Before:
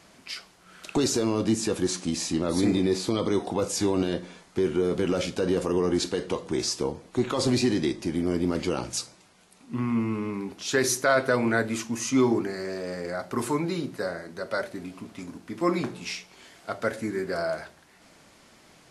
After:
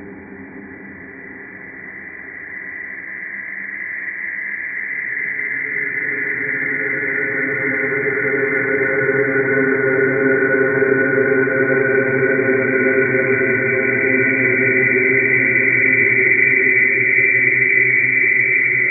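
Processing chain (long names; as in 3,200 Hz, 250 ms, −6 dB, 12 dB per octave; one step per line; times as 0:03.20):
hearing-aid frequency compression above 1,400 Hz 4 to 1
extreme stretch with random phases 45×, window 0.25 s, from 0:10.53
level +6.5 dB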